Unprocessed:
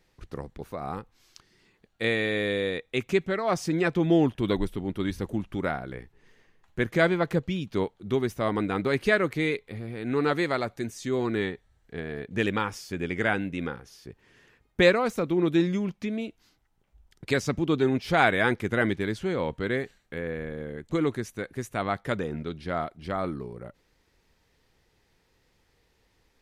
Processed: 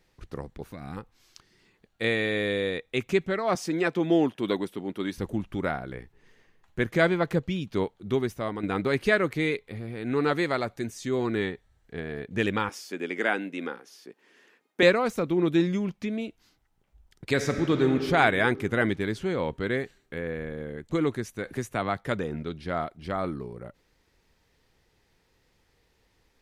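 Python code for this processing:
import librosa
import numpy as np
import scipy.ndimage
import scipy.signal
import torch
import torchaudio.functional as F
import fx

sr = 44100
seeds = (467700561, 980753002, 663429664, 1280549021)

y = fx.spec_box(x, sr, start_s=0.72, length_s=0.25, low_hz=330.0, high_hz=1400.0, gain_db=-11)
y = fx.highpass(y, sr, hz=220.0, slope=12, at=(3.55, 5.18))
y = fx.highpass(y, sr, hz=240.0, slope=24, at=(12.69, 14.83))
y = fx.reverb_throw(y, sr, start_s=17.31, length_s=0.59, rt60_s=2.7, drr_db=5.5)
y = fx.band_squash(y, sr, depth_pct=40, at=(21.46, 21.99))
y = fx.edit(y, sr, fx.fade_out_to(start_s=8.18, length_s=0.45, floor_db=-8.5), tone=tone)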